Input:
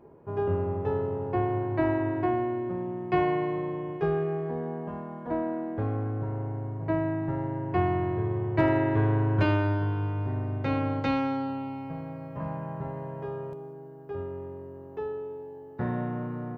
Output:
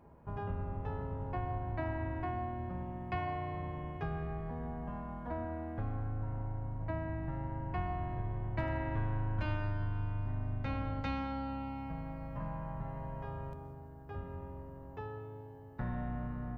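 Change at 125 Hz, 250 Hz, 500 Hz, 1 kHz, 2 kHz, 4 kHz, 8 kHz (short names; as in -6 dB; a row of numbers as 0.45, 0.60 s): -7.0 dB, -12.5 dB, -14.5 dB, -8.0 dB, -8.5 dB, -8.5 dB, n/a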